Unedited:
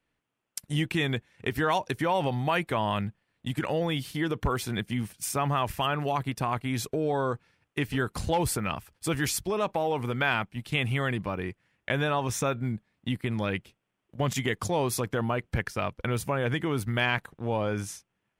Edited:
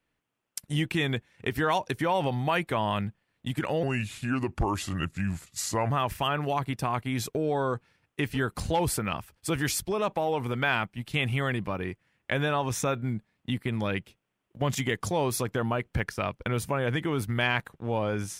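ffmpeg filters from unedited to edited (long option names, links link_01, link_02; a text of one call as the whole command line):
ffmpeg -i in.wav -filter_complex "[0:a]asplit=3[link_01][link_02][link_03];[link_01]atrim=end=3.834[link_04];[link_02]atrim=start=3.83:end=5.49,asetpts=PTS-STARTPTS,asetrate=35280,aresample=44100[link_05];[link_03]atrim=start=5.486[link_06];[link_04][link_05]acrossfade=duration=0.004:curve1=hsin:curve2=hsin[link_07];[link_07][link_06]acrossfade=duration=0.004:curve1=hsin:curve2=hsin" out.wav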